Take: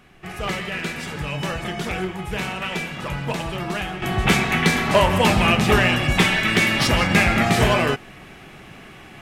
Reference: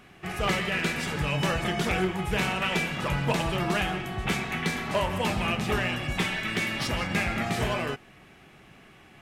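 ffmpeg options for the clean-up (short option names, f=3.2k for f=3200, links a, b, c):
-af "agate=range=-21dB:threshold=-34dB,asetnsamples=n=441:p=0,asendcmd='4.02 volume volume -10.5dB',volume=0dB"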